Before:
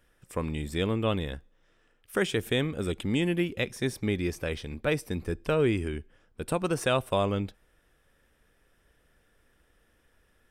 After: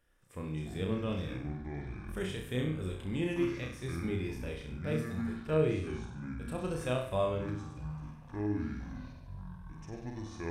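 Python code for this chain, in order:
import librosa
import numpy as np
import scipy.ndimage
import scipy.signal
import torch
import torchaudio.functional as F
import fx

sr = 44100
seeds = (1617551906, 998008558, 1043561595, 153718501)

y = fx.hpss(x, sr, part='percussive', gain_db=-10)
y = fx.room_flutter(y, sr, wall_m=5.5, rt60_s=0.5)
y = fx.echo_pitch(y, sr, ms=113, semitones=-7, count=3, db_per_echo=-6.0)
y = F.gain(torch.from_numpy(y), -6.0).numpy()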